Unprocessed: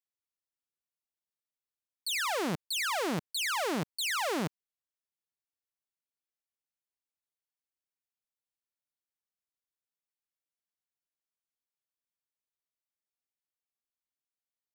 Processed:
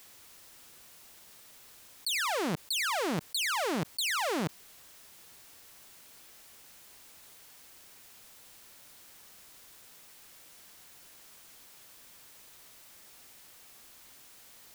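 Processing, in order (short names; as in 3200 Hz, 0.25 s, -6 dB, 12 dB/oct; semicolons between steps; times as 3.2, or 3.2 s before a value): fast leveller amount 100%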